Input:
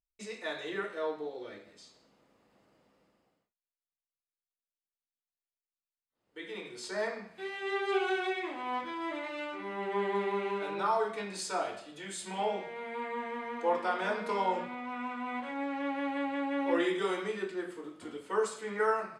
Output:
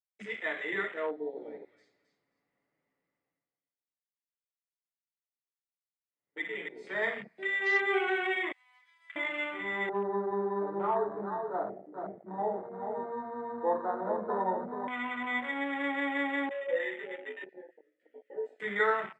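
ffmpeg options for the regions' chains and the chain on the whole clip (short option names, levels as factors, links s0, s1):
-filter_complex "[0:a]asettb=1/sr,asplit=3[s0][s1][s2];[s0]atrim=end=1.104[s3];[s1]atrim=start=1.1:end=7.02,asetpts=PTS-STARTPTS,afade=t=in:d=0.004:c=qsin,afade=t=out:st=5.916:d=0.004:c=qsin,lowpass=f=2900:p=1,aecho=1:1:7:0.41,atrim=end_sample=261072,aecho=1:1:267|534|801:0.398|0.0995|0.0249,atrim=end_sample=261072[s4];[s2]atrim=start=7.016[s5];[s3][s4]acrossfade=d=0.004:c1=hsin:c2=qsin[s6];[s6][s5]acrossfade=d=0.004:c1=qsin:c2=hsin,asettb=1/sr,asplit=3[s7][s8][s9];[s7]atrim=end=8.524[s10];[s8]atrim=start=8.52:end=9.16,asetpts=PTS-STARTPTS,afade=t=in:d=0.004:c=qsin,afade=t=out:st=0.636:d=0.004:c=qsin,highpass=f=700:w=0.5412,highpass=f=700:w=1.3066,aderivative[s11];[s9]atrim=start=9.156[s12];[s10][s11]acrossfade=d=0.004:c1=hsin:c2=qsin[s13];[s13][s12]acrossfade=d=0.004:c1=qsin:c2=hsin,asettb=1/sr,asplit=3[s14][s15][s16];[s14]atrim=end=9.894[s17];[s15]atrim=start=9.89:end=14.88,asetpts=PTS-STARTPTS,afade=t=in:d=0.004:c=qsin,afade=t=out:st=4.986:d=0.004:c=qsin,lowpass=f=1100:w=0.5412,lowpass=f=1100:w=1.3066,aecho=1:1:434:0.501,atrim=end_sample=220059[s18];[s16]atrim=start=14.876[s19];[s17][s18]acrossfade=d=0.004:c1=hsin:c2=qsin[s20];[s20][s19]acrossfade=d=0.004:c1=qsin:c2=hsin,asettb=1/sr,asplit=3[s21][s22][s23];[s21]atrim=end=16.494[s24];[s22]atrim=start=16.49:end=18.6,asetpts=PTS-STARTPTS,afade=t=in:d=0.004:c=qsin,afade=t=out:st=2.106:d=0.004:c=qsin,asplit=3[s25][s26][s27];[s25]bandpass=f=530:t=q:w=8,volume=1[s28];[s26]bandpass=f=1840:t=q:w=8,volume=0.501[s29];[s27]bandpass=f=2480:t=q:w=8,volume=0.355[s30];[s28][s29][s30]amix=inputs=3:normalize=0,asplit=2[s31][s32];[s32]adelay=16,volume=0.562[s33];[s31][s33]amix=inputs=2:normalize=0,atrim=end_sample=93051[s34];[s23]atrim=start=18.596[s35];[s24][s34]acrossfade=d=0.004:c1=hsin:c2=qsin[s36];[s36][s35]acrossfade=d=0.004:c1=qsin:c2=hsin,highpass=56,equalizer=f=2000:t=o:w=0.33:g=13.5,afwtdn=0.0112"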